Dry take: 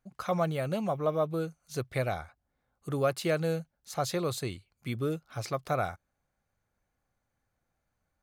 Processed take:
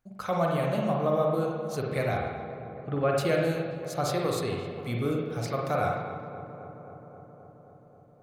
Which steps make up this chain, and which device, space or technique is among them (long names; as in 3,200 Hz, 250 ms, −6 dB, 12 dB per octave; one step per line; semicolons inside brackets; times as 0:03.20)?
0:02.17–0:03.18: low-pass filter 3,200 Hz 24 dB per octave
dub delay into a spring reverb (feedback echo with a low-pass in the loop 265 ms, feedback 78%, low-pass 2,100 Hz, level −12 dB; spring reverb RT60 1.1 s, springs 42/52 ms, chirp 25 ms, DRR −1 dB)